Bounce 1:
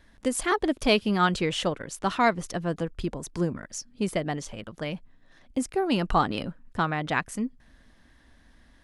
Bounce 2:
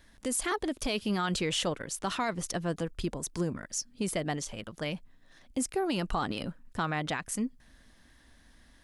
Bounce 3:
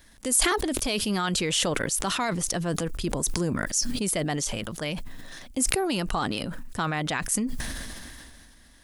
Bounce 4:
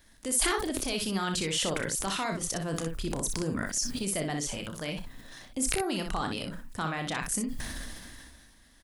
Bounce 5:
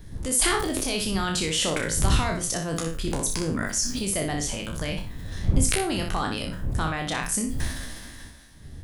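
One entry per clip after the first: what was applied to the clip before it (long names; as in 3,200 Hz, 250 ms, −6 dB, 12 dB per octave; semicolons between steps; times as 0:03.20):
high-shelf EQ 4,200 Hz +9 dB; brickwall limiter −18.5 dBFS, peak gain reduction 11.5 dB; level −2.5 dB
high-shelf EQ 5,700 Hz +9.5 dB; level that may fall only so fast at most 25 dB per second; level +2.5 dB
ambience of single reflections 31 ms −9.5 dB, 61 ms −6.5 dB; level −5.5 dB
peak hold with a decay on every bin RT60 0.35 s; wind on the microphone 93 Hz −34 dBFS; level +3 dB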